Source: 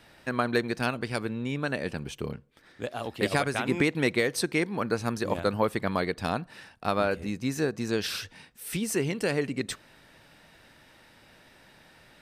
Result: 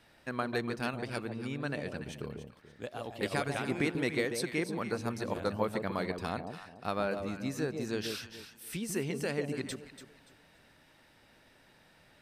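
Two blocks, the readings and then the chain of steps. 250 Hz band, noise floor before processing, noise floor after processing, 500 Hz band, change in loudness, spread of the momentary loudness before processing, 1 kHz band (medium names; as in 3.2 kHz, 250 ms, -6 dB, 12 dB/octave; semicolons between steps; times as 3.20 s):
-5.5 dB, -57 dBFS, -63 dBFS, -6.0 dB, -6.0 dB, 10 LU, -6.5 dB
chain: echo whose repeats swap between lows and highs 144 ms, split 820 Hz, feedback 51%, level -5 dB; trim -7 dB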